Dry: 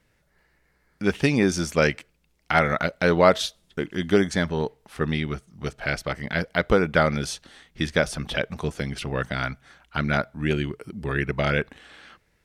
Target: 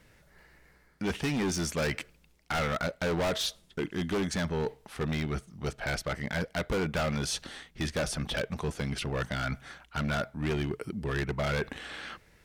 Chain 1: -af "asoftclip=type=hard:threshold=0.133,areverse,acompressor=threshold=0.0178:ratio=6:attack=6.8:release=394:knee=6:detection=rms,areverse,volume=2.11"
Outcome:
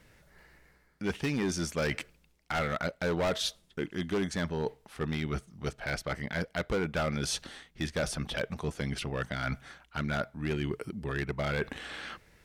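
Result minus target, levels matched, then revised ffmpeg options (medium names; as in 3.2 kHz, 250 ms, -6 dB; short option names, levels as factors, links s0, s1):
hard clipper: distortion -4 dB
-af "asoftclip=type=hard:threshold=0.0668,areverse,acompressor=threshold=0.0178:ratio=6:attack=6.8:release=394:knee=6:detection=rms,areverse,volume=2.11"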